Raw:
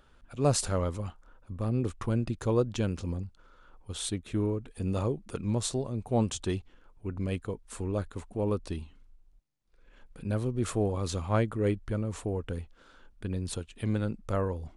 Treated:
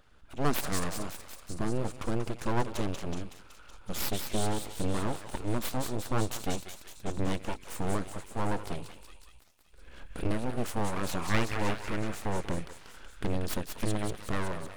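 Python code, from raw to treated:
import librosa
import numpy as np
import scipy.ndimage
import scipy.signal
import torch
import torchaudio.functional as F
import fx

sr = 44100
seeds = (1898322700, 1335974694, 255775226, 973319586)

p1 = fx.recorder_agc(x, sr, target_db=-18.5, rise_db_per_s=5.7, max_gain_db=30)
p2 = fx.spec_box(p1, sr, start_s=10.89, length_s=1.19, low_hz=800.0, high_hz=2800.0, gain_db=6)
p3 = p2 + fx.echo_thinned(p2, sr, ms=187, feedback_pct=72, hz=1000.0, wet_db=-5.5, dry=0)
y = np.abs(p3)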